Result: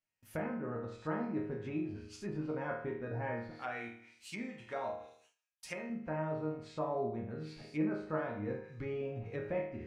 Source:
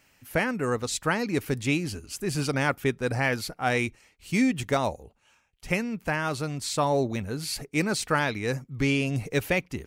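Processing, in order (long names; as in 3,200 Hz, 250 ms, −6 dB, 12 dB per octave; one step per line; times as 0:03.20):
0:03.55–0:05.90: spectral tilt +4 dB per octave
resonators tuned to a chord D#2 sus4, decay 0.58 s
noise gate with hold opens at −59 dBFS
treble cut that deepens with the level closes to 1,100 Hz, closed at −41 dBFS
convolution reverb RT60 0.35 s, pre-delay 3 ms, DRR 9 dB
level +5 dB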